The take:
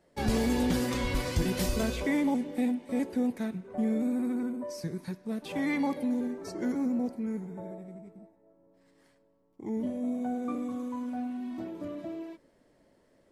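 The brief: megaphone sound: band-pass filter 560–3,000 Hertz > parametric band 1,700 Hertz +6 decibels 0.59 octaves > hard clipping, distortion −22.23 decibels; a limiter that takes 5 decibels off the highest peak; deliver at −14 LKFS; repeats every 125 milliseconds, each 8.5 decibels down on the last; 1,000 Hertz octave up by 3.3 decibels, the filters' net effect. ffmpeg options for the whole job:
ffmpeg -i in.wav -af "equalizer=frequency=1000:width_type=o:gain=4.5,alimiter=limit=-22dB:level=0:latency=1,highpass=560,lowpass=3000,equalizer=frequency=1700:width_type=o:width=0.59:gain=6,aecho=1:1:125|250|375|500:0.376|0.143|0.0543|0.0206,asoftclip=type=hard:threshold=-28.5dB,volume=25dB" out.wav

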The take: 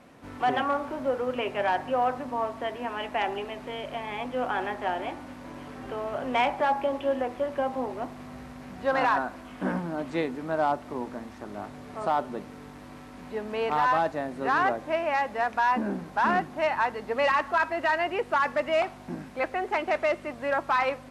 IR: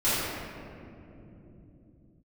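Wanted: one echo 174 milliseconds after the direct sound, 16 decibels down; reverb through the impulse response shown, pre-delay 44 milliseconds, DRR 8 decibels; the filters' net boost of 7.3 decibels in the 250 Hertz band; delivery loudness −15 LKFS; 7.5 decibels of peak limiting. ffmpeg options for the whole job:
-filter_complex "[0:a]equalizer=frequency=250:width_type=o:gain=8.5,alimiter=limit=-19.5dB:level=0:latency=1,aecho=1:1:174:0.158,asplit=2[link_01][link_02];[1:a]atrim=start_sample=2205,adelay=44[link_03];[link_02][link_03]afir=irnorm=-1:irlink=0,volume=-22.5dB[link_04];[link_01][link_04]amix=inputs=2:normalize=0,volume=13.5dB"

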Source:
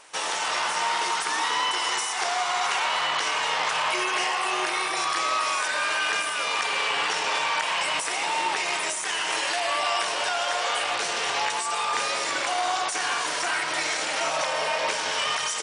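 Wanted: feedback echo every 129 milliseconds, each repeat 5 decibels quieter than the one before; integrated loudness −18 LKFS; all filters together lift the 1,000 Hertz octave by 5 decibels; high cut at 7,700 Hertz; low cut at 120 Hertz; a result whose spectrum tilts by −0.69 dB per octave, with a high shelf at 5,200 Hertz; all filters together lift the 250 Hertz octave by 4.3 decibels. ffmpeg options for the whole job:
ffmpeg -i in.wav -af "highpass=120,lowpass=7700,equalizer=frequency=250:width_type=o:gain=6.5,equalizer=frequency=1000:width_type=o:gain=6,highshelf=frequency=5200:gain=-6,aecho=1:1:129|258|387|516|645|774|903:0.562|0.315|0.176|0.0988|0.0553|0.031|0.0173,volume=3dB" out.wav

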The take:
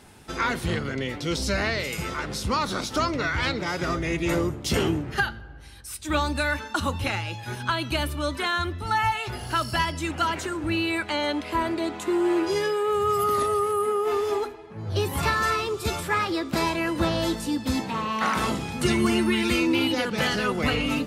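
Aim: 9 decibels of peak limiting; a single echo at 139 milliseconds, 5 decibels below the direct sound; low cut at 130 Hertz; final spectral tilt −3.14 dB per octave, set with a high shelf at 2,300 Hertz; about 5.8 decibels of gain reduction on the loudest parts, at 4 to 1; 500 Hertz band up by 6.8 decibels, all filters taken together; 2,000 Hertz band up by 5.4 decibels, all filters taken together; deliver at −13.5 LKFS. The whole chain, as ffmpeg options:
ffmpeg -i in.wav -af "highpass=130,equalizer=frequency=500:width_type=o:gain=9,equalizer=frequency=2000:width_type=o:gain=8,highshelf=frequency=2300:gain=-3.5,acompressor=threshold=-22dB:ratio=4,alimiter=limit=-19dB:level=0:latency=1,aecho=1:1:139:0.562,volume=13dB" out.wav

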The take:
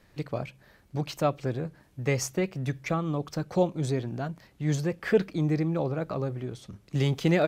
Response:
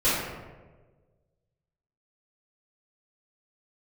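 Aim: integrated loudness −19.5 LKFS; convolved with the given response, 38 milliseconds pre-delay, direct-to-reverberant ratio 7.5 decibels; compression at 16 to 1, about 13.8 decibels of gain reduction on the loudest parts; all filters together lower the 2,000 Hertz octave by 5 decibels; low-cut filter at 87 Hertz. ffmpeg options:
-filter_complex "[0:a]highpass=87,equalizer=frequency=2000:width_type=o:gain=-6,acompressor=threshold=-30dB:ratio=16,asplit=2[link_01][link_02];[1:a]atrim=start_sample=2205,adelay=38[link_03];[link_02][link_03]afir=irnorm=-1:irlink=0,volume=-23dB[link_04];[link_01][link_04]amix=inputs=2:normalize=0,volume=16dB"

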